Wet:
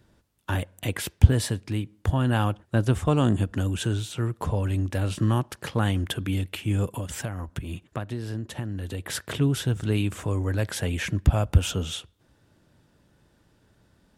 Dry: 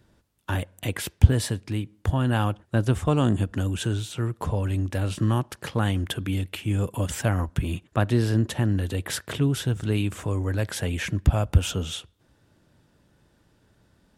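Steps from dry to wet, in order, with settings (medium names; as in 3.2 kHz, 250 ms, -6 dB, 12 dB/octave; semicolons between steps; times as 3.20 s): 6.85–9.15 s: compression 5:1, threshold -29 dBFS, peak gain reduction 12 dB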